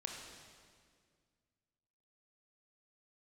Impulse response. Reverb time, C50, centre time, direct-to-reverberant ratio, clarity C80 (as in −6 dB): 2.0 s, 2.0 dB, 72 ms, 0.5 dB, 3.5 dB